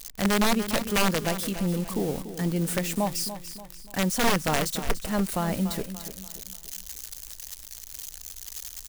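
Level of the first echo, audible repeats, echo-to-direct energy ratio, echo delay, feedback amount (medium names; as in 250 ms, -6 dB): -11.5 dB, 4, -10.5 dB, 290 ms, 42%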